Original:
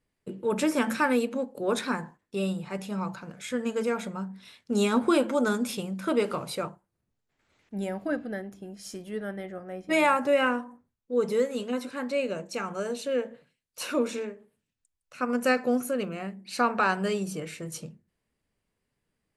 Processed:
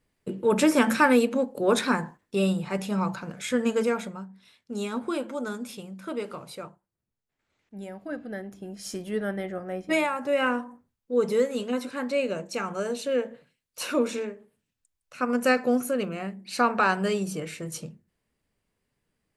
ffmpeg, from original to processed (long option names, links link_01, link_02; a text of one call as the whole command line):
ffmpeg -i in.wav -af "volume=26.5dB,afade=type=out:start_time=3.71:duration=0.56:silence=0.251189,afade=type=in:start_time=8.05:duration=0.91:silence=0.251189,afade=type=out:start_time=9.77:duration=0.33:silence=0.237137,afade=type=in:start_time=10.1:duration=0.51:silence=0.334965" out.wav